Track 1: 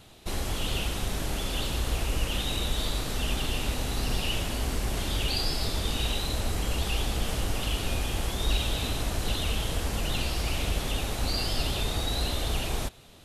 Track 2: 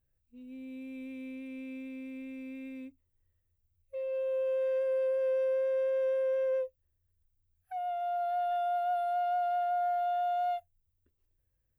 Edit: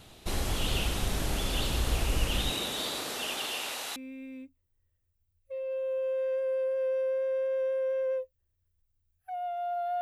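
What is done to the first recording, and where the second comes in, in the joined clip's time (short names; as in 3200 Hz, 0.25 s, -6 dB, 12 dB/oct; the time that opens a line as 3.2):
track 1
2.5–3.96 HPF 190 Hz -> 870 Hz
3.96 switch to track 2 from 2.39 s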